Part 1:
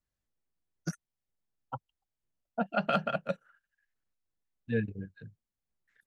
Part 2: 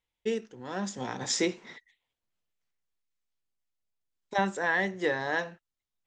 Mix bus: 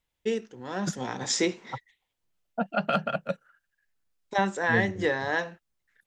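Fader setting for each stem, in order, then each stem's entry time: +2.5, +2.0 decibels; 0.00, 0.00 seconds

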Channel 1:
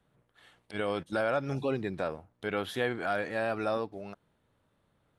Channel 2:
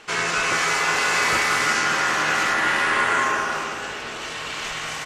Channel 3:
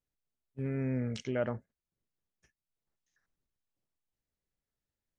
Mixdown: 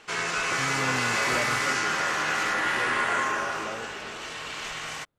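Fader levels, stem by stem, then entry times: −8.0, −5.5, −1.5 decibels; 0.00, 0.00, 0.00 seconds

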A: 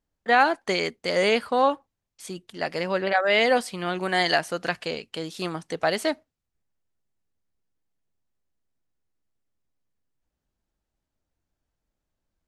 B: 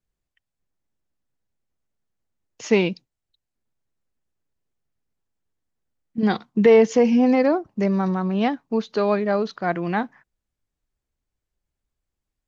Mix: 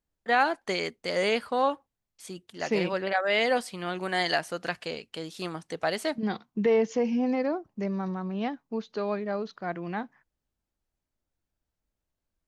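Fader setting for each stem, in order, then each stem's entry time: −4.5, −9.5 decibels; 0.00, 0.00 seconds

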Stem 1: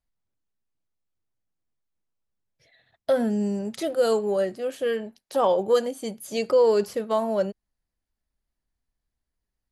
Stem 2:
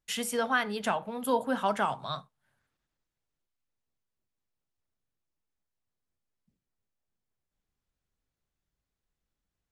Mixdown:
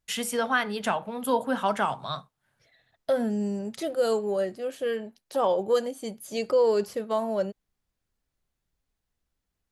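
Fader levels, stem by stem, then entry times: −3.0, +2.5 decibels; 0.00, 0.00 seconds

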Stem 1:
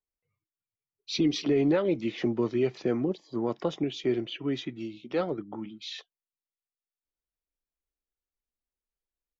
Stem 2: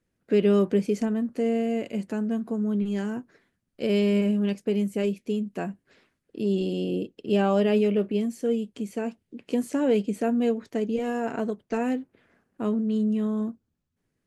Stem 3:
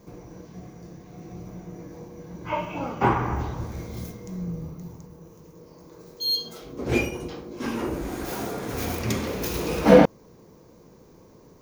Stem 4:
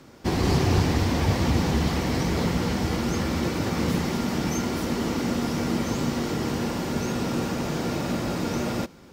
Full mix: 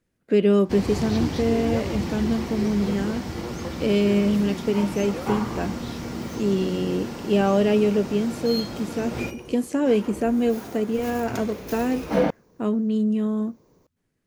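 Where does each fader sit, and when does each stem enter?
−7.0, +2.5, −7.5, −6.5 decibels; 0.00, 0.00, 2.25, 0.45 seconds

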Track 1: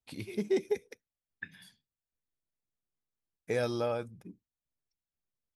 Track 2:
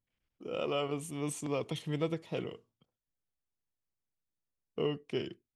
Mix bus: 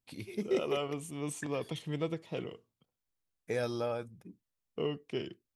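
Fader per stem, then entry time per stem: −2.5, −1.5 decibels; 0.00, 0.00 seconds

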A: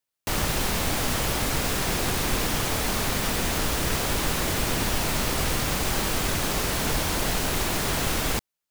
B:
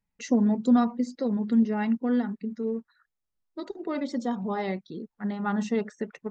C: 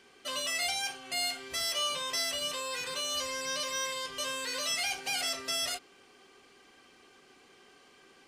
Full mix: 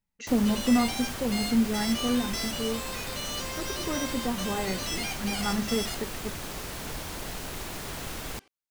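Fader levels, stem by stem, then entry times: −11.0, −2.0, −2.5 decibels; 0.00, 0.00, 0.20 seconds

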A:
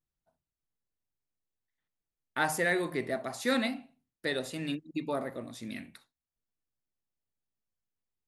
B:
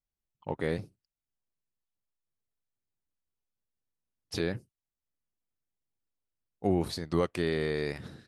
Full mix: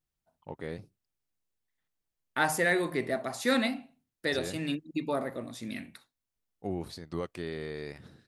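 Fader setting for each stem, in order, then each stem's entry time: +2.0, −7.5 decibels; 0.00, 0.00 seconds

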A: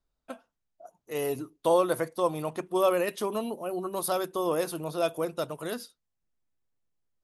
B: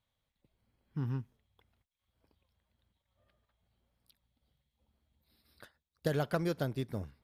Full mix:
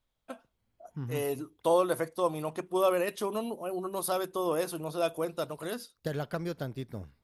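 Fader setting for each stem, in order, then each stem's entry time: −2.0, −2.0 decibels; 0.00, 0.00 seconds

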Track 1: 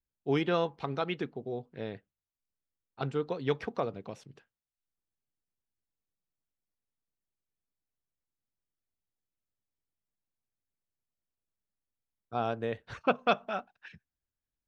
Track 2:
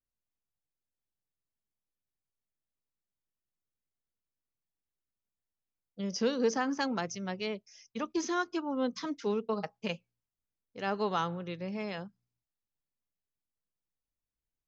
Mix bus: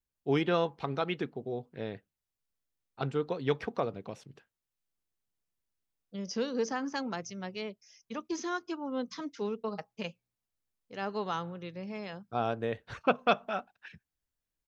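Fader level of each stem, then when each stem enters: +0.5, −3.0 decibels; 0.00, 0.15 seconds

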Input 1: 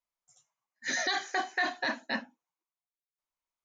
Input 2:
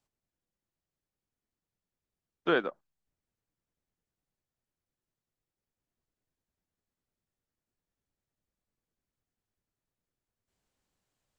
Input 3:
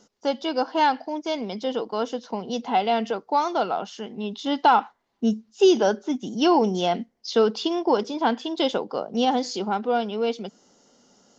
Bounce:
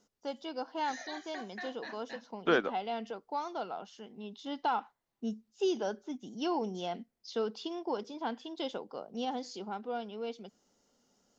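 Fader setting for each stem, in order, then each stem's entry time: −14.0, −0.5, −14.0 decibels; 0.00, 0.00, 0.00 seconds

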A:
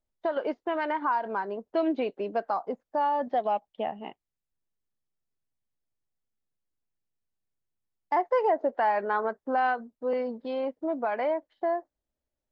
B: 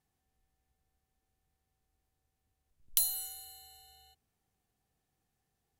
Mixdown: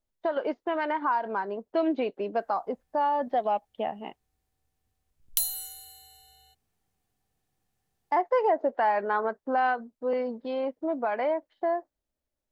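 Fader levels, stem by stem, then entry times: +0.5, +2.0 decibels; 0.00, 2.40 seconds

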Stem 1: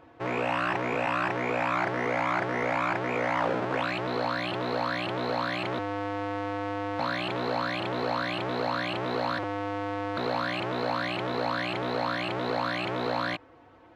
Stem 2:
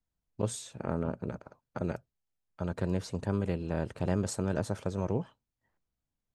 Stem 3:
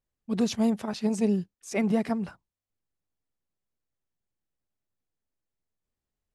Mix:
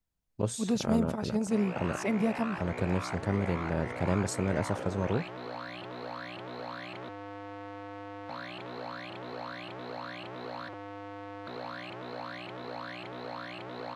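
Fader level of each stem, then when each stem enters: −11.0, +1.0, −3.5 decibels; 1.30, 0.00, 0.30 seconds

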